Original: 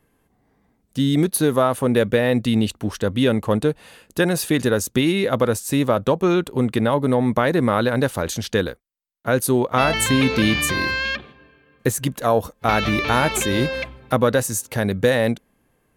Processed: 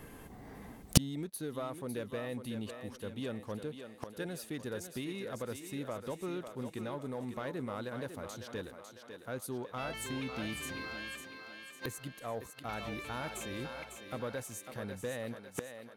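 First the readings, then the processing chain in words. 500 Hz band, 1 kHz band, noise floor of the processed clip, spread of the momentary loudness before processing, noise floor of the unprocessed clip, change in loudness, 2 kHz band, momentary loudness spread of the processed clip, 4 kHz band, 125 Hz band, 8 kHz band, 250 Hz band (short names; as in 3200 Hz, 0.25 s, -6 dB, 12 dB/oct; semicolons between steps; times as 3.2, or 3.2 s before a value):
-20.5 dB, -20.5 dB, -54 dBFS, 6 LU, -65 dBFS, -19.5 dB, -20.0 dB, 7 LU, -17.5 dB, -18.0 dB, -15.5 dB, -20.0 dB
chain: sample leveller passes 1; thinning echo 0.551 s, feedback 54%, high-pass 280 Hz, level -7 dB; flipped gate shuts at -19 dBFS, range -40 dB; gain +15.5 dB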